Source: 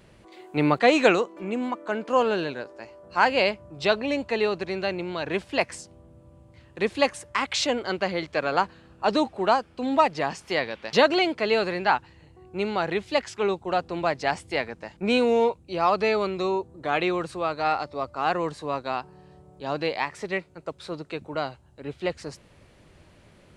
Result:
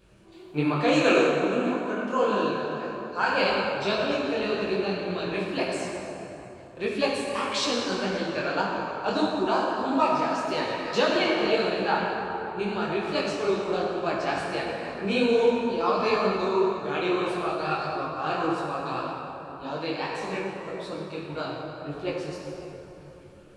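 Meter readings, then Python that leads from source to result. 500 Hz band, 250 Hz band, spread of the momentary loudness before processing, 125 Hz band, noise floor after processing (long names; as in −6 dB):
−0.5 dB, +1.0 dB, 12 LU, +1.0 dB, −46 dBFS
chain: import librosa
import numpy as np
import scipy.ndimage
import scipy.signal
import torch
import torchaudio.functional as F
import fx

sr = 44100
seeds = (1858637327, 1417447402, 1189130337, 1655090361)

y = fx.spec_quant(x, sr, step_db=15)
y = fx.peak_eq(y, sr, hz=740.0, db=-4.0, octaves=0.85)
y = fx.notch(y, sr, hz=2000.0, q=5.5)
y = fx.rev_plate(y, sr, seeds[0], rt60_s=3.5, hf_ratio=0.55, predelay_ms=0, drr_db=-3.0)
y = fx.detune_double(y, sr, cents=59)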